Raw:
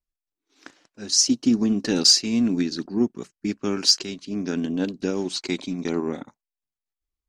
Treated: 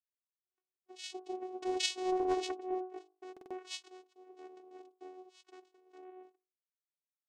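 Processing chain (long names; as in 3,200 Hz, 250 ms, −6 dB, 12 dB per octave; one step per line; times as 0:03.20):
pitch shifter swept by a sawtooth +1.5 semitones, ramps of 627 ms
source passing by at 0:02.33, 42 m/s, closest 7.3 metres
noise gate −59 dBFS, range −22 dB
mains-hum notches 50/100/150/200/250/300/350/400 Hz
comb filter 1.8 ms, depth 52%
channel vocoder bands 4, saw 370 Hz
buffer that repeats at 0:03.32, samples 2,048, times 3
highs frequency-modulated by the lows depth 0.24 ms
level −1.5 dB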